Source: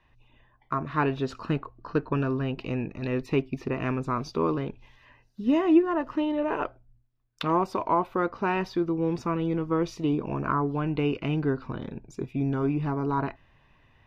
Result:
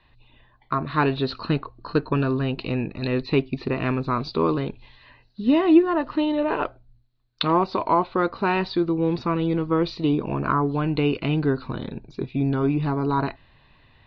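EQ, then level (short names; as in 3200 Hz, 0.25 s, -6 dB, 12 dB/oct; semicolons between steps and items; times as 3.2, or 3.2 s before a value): synth low-pass 4200 Hz, resonance Q 10; air absorption 190 m; +4.5 dB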